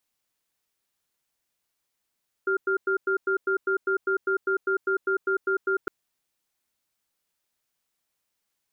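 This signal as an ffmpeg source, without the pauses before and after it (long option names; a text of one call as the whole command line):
ffmpeg -f lavfi -i "aevalsrc='0.0631*(sin(2*PI*385*t)+sin(2*PI*1400*t))*clip(min(mod(t,0.2),0.1-mod(t,0.2))/0.005,0,1)':duration=3.41:sample_rate=44100" out.wav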